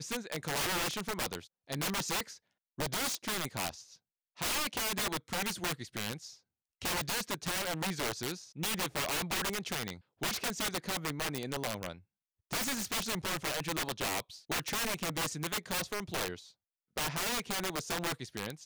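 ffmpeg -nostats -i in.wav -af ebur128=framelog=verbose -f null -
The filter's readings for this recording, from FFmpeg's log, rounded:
Integrated loudness:
  I:         -34.6 LUFS
  Threshold: -44.9 LUFS
Loudness range:
  LRA:         1.7 LU
  Threshold: -55.0 LUFS
  LRA low:   -35.8 LUFS
  LRA high:  -34.1 LUFS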